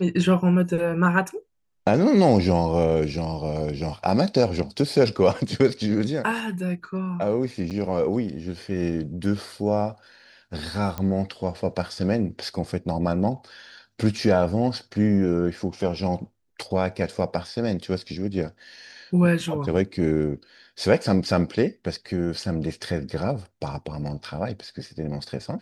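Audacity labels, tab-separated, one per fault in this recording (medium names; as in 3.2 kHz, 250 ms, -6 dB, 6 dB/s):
7.700000	7.710000	dropout 8.2 ms
10.980000	10.980000	pop -15 dBFS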